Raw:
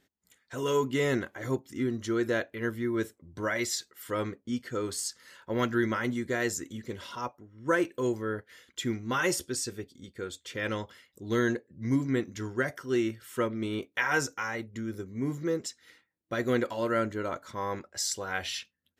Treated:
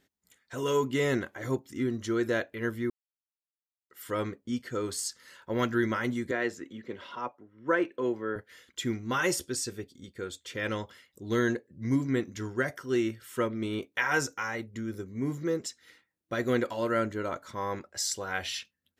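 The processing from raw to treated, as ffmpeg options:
-filter_complex "[0:a]asettb=1/sr,asplit=3[a][b][c];[a]atrim=end=6.314[d];[b]atrim=start=6.31:end=8.36,asetpts=PTS-STARTPTS,afade=t=in:d=0.004:c=qsin,afade=t=out:st=2.046:d=0.004:c=qsin,acrossover=split=190 3700:gain=0.251 1 0.112[e][f][g];[e][f][g]amix=inputs=3:normalize=0[h];[c]atrim=start=8.356[i];[d][h]acrossfade=d=0.004:c1=hsin:c2=qsin[j];[j][i]acrossfade=d=0.004:c1=qsin:c2=hsin,asplit=3[k][l][m];[k]atrim=end=2.9,asetpts=PTS-STARTPTS,afade=t=out:st=2.896:d=0.004:c=hsin[n];[l]atrim=start=2.9:end=3.9,asetpts=PTS-STARTPTS,volume=0[o];[m]atrim=start=3.9,asetpts=PTS-STARTPTS,afade=t=in:d=0.004:c=hsin[p];[n][o][p]concat=n=3:v=0:a=1"

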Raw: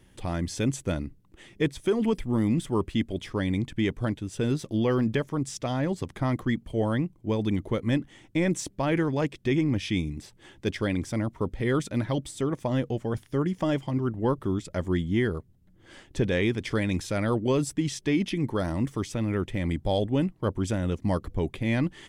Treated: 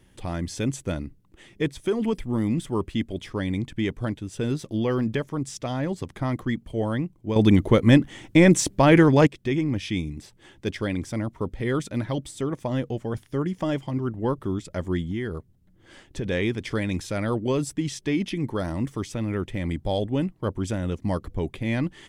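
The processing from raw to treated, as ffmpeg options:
-filter_complex "[0:a]asettb=1/sr,asplit=3[a][b][c];[a]atrim=end=15.114[d];[b]atrim=start=15.11:end=16.26,asetpts=PTS-STARTPTS,afade=t=in:d=0.004:c=qsin,afade=t=out:st=1.146:d=0.004:c=qsin,acompressor=threshold=-27dB:ratio=2.5:attack=3.2:release=140:knee=1:detection=peak[e];[c]atrim=start=16.256[f];[d][e]acrossfade=d=0.004:c1=hsin:c2=qsin[g];[g][f]acrossfade=d=0.004:c1=qsin:c2=hsin,asplit=3[h][i][j];[h]atrim=end=7.362[k];[i]atrim=start=7.358:end=9.272,asetpts=PTS-STARTPTS,volume=10dB[l];[j]atrim=start=9.268[m];[k][l]acrossfade=d=0.004:c1=hsin:c2=hsin[n];[n][m]acrossfade=d=0.004:c1=hsin:c2=hsin"

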